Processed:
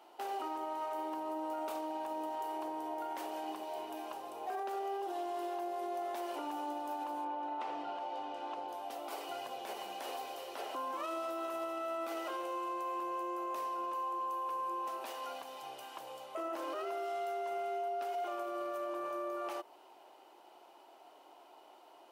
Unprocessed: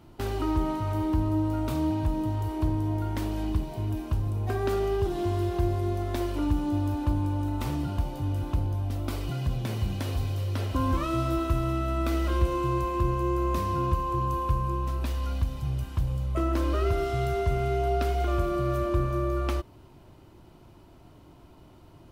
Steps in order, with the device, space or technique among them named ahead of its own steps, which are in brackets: 7.24–8.67 LPF 2900 Hz -> 5300 Hz 12 dB/oct; dynamic EQ 3600 Hz, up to -4 dB, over -51 dBFS, Q 1.1; laptop speaker (HPF 420 Hz 24 dB/oct; bell 790 Hz +10.5 dB 0.43 oct; bell 2900 Hz +4.5 dB 0.27 oct; limiter -28.5 dBFS, peak gain reduction 11.5 dB); gain -3 dB

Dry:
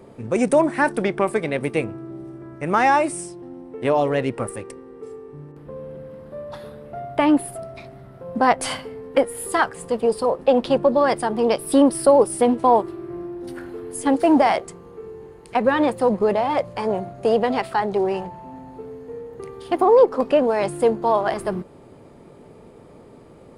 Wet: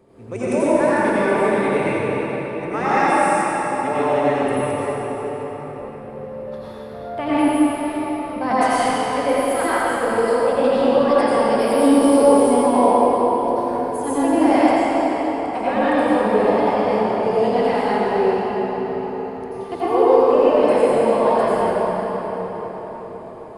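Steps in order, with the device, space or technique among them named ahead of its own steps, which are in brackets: cathedral (reverb RT60 5.4 s, pre-delay 79 ms, DRR -12.5 dB); gain -9.5 dB

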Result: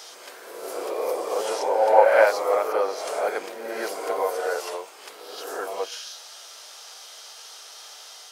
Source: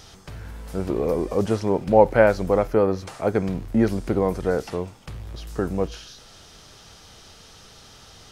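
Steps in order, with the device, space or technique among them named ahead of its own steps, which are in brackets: high shelf 5100 Hz +9.5 dB; ghost voice (reverse; reverb RT60 1.4 s, pre-delay 7 ms, DRR -1 dB; reverse; HPF 530 Hz 24 dB/oct); gain -1 dB

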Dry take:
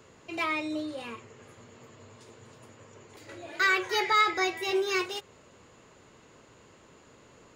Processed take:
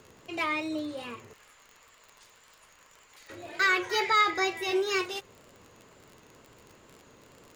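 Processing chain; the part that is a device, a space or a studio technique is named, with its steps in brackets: 1.33–3.3 HPF 1100 Hz 12 dB/oct; vinyl LP (wow and flutter; crackle 39/s -40 dBFS; pink noise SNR 38 dB)

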